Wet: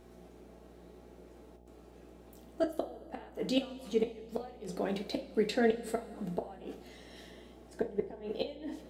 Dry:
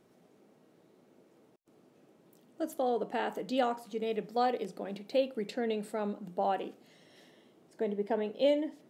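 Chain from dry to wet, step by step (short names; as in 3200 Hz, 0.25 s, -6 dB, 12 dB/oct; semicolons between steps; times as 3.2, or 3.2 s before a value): flipped gate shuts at -24 dBFS, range -26 dB; buzz 60 Hz, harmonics 14, -65 dBFS -4 dB/oct; two-slope reverb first 0.26 s, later 2.5 s, from -19 dB, DRR 3 dB; gain +5 dB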